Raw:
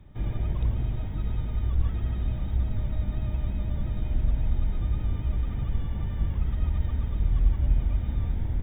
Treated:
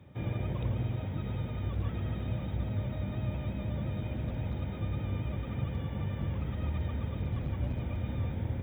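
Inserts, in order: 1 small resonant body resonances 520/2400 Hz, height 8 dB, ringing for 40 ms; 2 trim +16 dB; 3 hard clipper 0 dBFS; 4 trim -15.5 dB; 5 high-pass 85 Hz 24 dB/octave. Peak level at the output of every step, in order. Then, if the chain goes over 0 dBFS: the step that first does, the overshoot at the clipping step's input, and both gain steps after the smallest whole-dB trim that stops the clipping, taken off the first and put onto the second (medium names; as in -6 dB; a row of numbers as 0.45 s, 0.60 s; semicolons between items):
-11.0 dBFS, +5.0 dBFS, 0.0 dBFS, -15.5 dBFS, -21.0 dBFS; step 2, 5.0 dB; step 2 +11 dB, step 4 -10.5 dB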